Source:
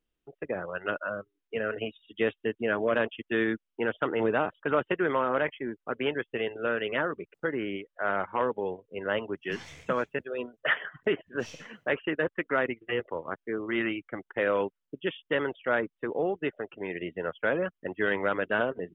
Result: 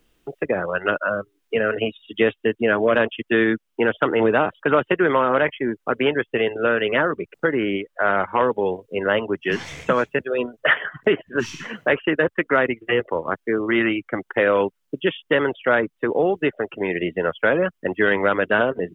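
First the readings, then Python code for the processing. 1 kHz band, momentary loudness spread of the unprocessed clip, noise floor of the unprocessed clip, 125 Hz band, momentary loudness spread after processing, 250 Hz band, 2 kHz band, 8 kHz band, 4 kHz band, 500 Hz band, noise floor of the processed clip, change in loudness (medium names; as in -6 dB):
+9.0 dB, 9 LU, -84 dBFS, +9.5 dB, 7 LU, +9.5 dB, +9.0 dB, no reading, +9.0 dB, +9.5 dB, -73 dBFS, +9.0 dB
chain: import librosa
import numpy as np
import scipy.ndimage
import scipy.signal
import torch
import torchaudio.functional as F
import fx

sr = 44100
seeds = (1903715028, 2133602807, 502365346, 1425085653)

y = fx.spec_erase(x, sr, start_s=11.39, length_s=0.25, low_hz=410.0, high_hz=870.0)
y = fx.band_squash(y, sr, depth_pct=40)
y = y * 10.0 ** (9.0 / 20.0)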